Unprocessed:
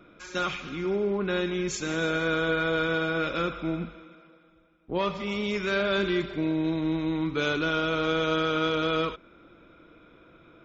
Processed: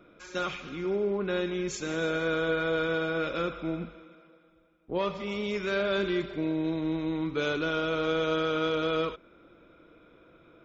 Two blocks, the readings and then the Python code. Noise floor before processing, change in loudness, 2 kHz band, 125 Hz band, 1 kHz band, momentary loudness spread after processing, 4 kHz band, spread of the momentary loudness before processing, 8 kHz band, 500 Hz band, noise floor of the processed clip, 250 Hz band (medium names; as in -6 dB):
-56 dBFS, -2.5 dB, -4.0 dB, -3.5 dB, -3.5 dB, 7 LU, -4.0 dB, 6 LU, no reading, -0.5 dB, -59 dBFS, -2.5 dB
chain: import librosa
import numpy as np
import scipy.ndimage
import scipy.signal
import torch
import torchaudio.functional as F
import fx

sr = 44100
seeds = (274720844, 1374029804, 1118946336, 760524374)

y = fx.peak_eq(x, sr, hz=500.0, db=4.0, octaves=0.97)
y = y * 10.0 ** (-4.0 / 20.0)